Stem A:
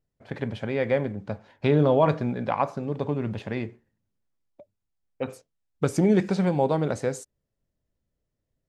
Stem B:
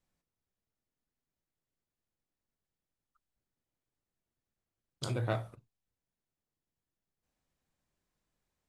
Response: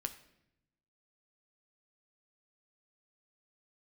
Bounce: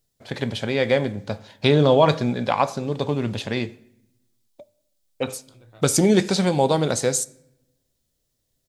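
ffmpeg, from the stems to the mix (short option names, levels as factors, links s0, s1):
-filter_complex "[0:a]bass=f=250:g=-2,treble=f=4000:g=14,volume=1.06,asplit=2[s0][s1];[s1]volume=0.668[s2];[1:a]adelay=450,volume=0.126[s3];[2:a]atrim=start_sample=2205[s4];[s2][s4]afir=irnorm=-1:irlink=0[s5];[s0][s3][s5]amix=inputs=3:normalize=0,equalizer=f=3700:t=o:w=0.74:g=6"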